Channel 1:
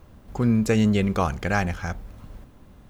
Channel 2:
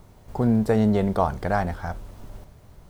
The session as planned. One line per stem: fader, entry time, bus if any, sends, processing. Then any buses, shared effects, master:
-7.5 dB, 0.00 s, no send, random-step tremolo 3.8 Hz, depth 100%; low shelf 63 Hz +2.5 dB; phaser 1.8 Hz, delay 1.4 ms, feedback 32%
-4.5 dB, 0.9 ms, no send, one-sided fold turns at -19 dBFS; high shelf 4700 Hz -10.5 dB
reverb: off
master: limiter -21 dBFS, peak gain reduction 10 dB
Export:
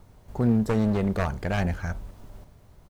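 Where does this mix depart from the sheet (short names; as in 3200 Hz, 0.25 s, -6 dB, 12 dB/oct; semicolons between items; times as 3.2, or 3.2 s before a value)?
stem 2: missing high shelf 4700 Hz -10.5 dB; master: missing limiter -21 dBFS, peak gain reduction 10 dB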